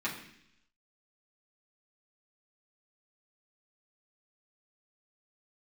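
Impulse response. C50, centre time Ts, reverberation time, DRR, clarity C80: 7.5 dB, 27 ms, 0.70 s, -7.0 dB, 10.0 dB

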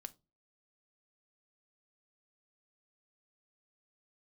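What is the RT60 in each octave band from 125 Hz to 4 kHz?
0.40 s, 0.40 s, 0.35 s, 0.25 s, 0.15 s, 0.20 s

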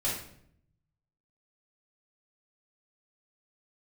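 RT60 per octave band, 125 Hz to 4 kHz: 1.3 s, 0.95 s, 0.75 s, 0.60 s, 0.55 s, 0.50 s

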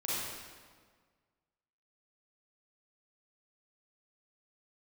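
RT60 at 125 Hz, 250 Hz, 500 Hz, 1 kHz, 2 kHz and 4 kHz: 1.8 s, 1.8 s, 1.7 s, 1.6 s, 1.4 s, 1.2 s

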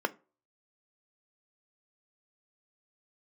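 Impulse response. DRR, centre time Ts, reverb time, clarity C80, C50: 11.0 dB, 4 ms, 0.35 s, 29.0 dB, 22.5 dB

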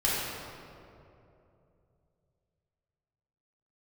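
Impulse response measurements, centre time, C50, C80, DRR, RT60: 145 ms, -3.0 dB, -1.0 dB, -9.0 dB, 2.8 s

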